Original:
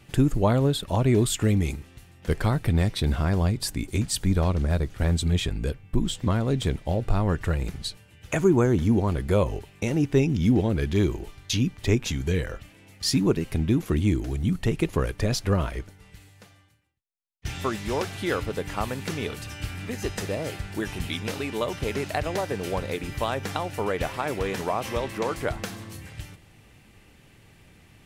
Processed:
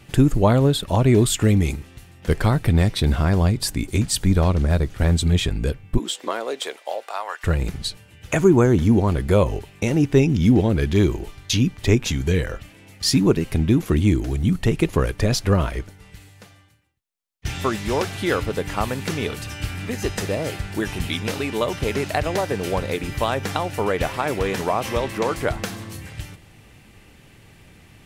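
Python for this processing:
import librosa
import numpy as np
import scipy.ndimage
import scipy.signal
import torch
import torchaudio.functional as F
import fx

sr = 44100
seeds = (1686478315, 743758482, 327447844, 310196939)

y = fx.highpass(x, sr, hz=fx.line((5.97, 300.0), (7.43, 810.0)), slope=24, at=(5.97, 7.43), fade=0.02)
y = y * 10.0 ** (5.0 / 20.0)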